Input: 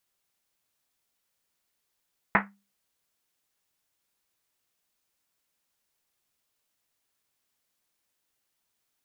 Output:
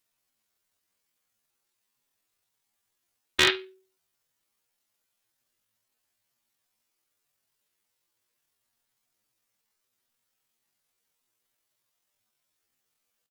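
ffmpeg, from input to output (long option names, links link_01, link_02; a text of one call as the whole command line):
ffmpeg -i in.wav -filter_complex "[0:a]atempo=0.68,asplit=2[link_01][link_02];[link_02]aecho=0:1:16|51:0.282|0.282[link_03];[link_01][link_03]amix=inputs=2:normalize=0,asetrate=83250,aresample=44100,atempo=0.529732,aeval=exprs='0.224*(abs(mod(val(0)/0.224+3,4)-2)-1)':channel_layout=same,volume=3dB" out.wav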